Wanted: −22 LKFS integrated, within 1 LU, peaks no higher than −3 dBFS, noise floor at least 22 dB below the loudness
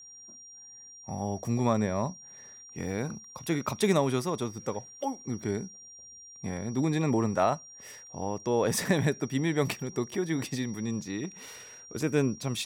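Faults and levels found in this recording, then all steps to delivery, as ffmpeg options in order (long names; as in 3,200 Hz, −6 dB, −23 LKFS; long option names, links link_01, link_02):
interfering tone 5,700 Hz; level of the tone −47 dBFS; integrated loudness −30.5 LKFS; sample peak −13.0 dBFS; target loudness −22.0 LKFS
→ -af "bandreject=frequency=5700:width=30"
-af "volume=8.5dB"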